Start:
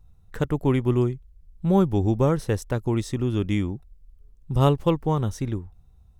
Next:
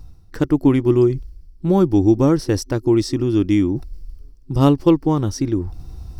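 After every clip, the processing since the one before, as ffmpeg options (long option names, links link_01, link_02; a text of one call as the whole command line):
ffmpeg -i in.wav -af "superequalizer=6b=3.16:14b=3.16,areverse,acompressor=mode=upward:threshold=-19dB:ratio=2.5,areverse,volume=2.5dB" out.wav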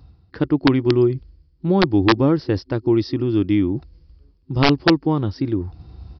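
ffmpeg -i in.wav -af "highpass=frequency=56:width=0.5412,highpass=frequency=56:width=1.3066,aresample=11025,aeval=exprs='(mod(1.88*val(0)+1,2)-1)/1.88':channel_layout=same,aresample=44100,volume=-1.5dB" out.wav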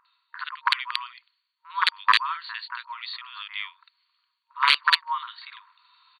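ffmpeg -i in.wav -filter_complex "[0:a]acrossover=split=1700[link_01][link_02];[link_02]adelay=50[link_03];[link_01][link_03]amix=inputs=2:normalize=0,afftfilt=real='re*between(b*sr/4096,930,4600)':imag='im*between(b*sr/4096,930,4600)':win_size=4096:overlap=0.75,acontrast=39" out.wav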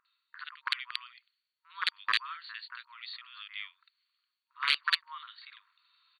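ffmpeg -i in.wav -af "equalizer=frequency=960:width=3.6:gain=-14,volume=-7.5dB" out.wav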